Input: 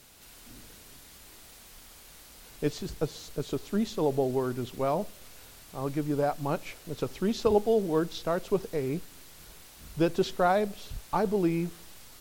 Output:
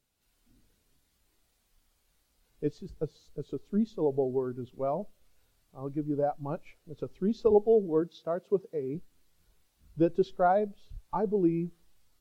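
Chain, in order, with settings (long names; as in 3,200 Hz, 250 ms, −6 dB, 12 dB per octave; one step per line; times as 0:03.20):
0:08.02–0:08.95: high-pass filter 120 Hz
every bin expanded away from the loudest bin 1.5 to 1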